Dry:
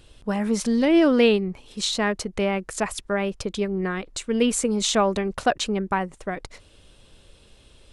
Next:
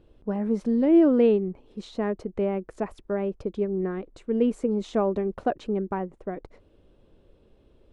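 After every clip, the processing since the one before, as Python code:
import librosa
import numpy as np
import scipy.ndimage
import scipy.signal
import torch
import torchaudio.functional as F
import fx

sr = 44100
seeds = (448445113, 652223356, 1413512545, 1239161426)

y = fx.curve_eq(x, sr, hz=(120.0, 360.0, 8100.0), db=(0, 7, -22))
y = F.gain(torch.from_numpy(y), -6.0).numpy()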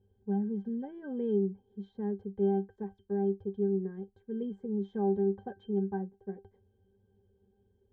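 y = fx.octave_resonator(x, sr, note='G', decay_s=0.14)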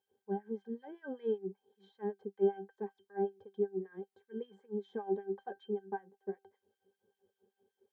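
y = fx.filter_lfo_highpass(x, sr, shape='sine', hz=5.2, low_hz=320.0, high_hz=1900.0, q=1.0)
y = F.gain(torch.from_numpy(y), 1.0).numpy()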